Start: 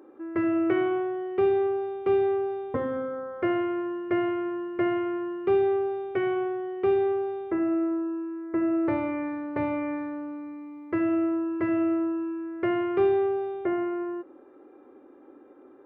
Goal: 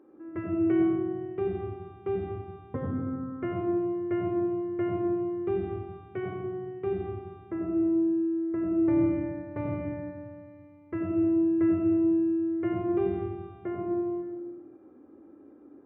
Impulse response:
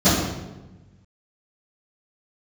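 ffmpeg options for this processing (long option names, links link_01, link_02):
-filter_complex "[0:a]bass=frequency=250:gain=11,treble=frequency=4000:gain=-9,asplit=2[link_01][link_02];[1:a]atrim=start_sample=2205,adelay=80[link_03];[link_02][link_03]afir=irnorm=-1:irlink=0,volume=-26.5dB[link_04];[link_01][link_04]amix=inputs=2:normalize=0,volume=-9dB"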